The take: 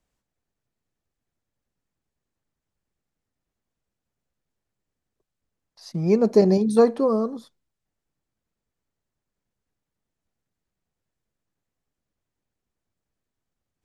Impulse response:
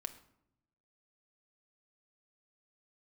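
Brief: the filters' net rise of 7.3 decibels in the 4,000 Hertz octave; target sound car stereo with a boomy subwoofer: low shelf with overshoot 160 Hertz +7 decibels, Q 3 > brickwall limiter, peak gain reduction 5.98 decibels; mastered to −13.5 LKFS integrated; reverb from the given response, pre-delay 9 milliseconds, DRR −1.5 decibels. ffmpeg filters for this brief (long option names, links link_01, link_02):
-filter_complex "[0:a]equalizer=frequency=4000:width_type=o:gain=8.5,asplit=2[link_01][link_02];[1:a]atrim=start_sample=2205,adelay=9[link_03];[link_02][link_03]afir=irnorm=-1:irlink=0,volume=4dB[link_04];[link_01][link_04]amix=inputs=2:normalize=0,lowshelf=frequency=160:width_type=q:width=3:gain=7,volume=7dB,alimiter=limit=-1dB:level=0:latency=1"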